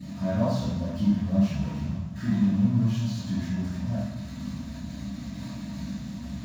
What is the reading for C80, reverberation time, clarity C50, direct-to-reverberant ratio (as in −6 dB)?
1.0 dB, non-exponential decay, −2.5 dB, −15.5 dB